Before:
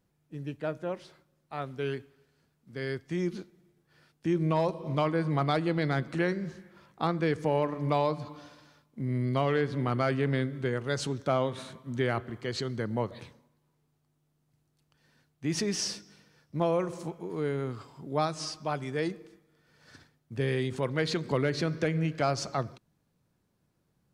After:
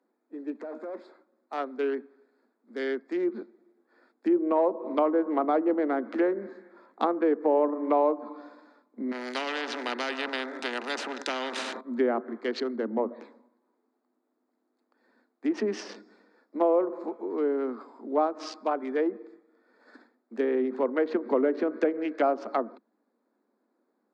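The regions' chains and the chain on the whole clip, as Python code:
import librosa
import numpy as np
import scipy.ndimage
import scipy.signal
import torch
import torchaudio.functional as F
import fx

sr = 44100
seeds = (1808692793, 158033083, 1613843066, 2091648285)

y = fx.chain(x, sr, fx.over_compress(threshold_db=-37.0, ratio=-1.0),
    fx.clip_hard(threshold_db=-37.5), at=(0.55, 0.96))
y = fx.chain(y, sr, fx.notch_comb(f0_hz=1100.0),
    fx.spectral_comp(ratio=4.0), at=(9.11, 11.81))
y = fx.chain(y, sr, fx.high_shelf(hz=2100.0, db=-11.5),
    fx.hum_notches(base_hz=60, count=4), at=(12.76, 13.2))
y = fx.wiener(y, sr, points=15)
y = scipy.signal.sosfilt(scipy.signal.butter(16, 220.0, 'highpass', fs=sr, output='sos'), y)
y = fx.env_lowpass_down(y, sr, base_hz=1000.0, full_db=-27.0)
y = y * 10.0 ** (5.5 / 20.0)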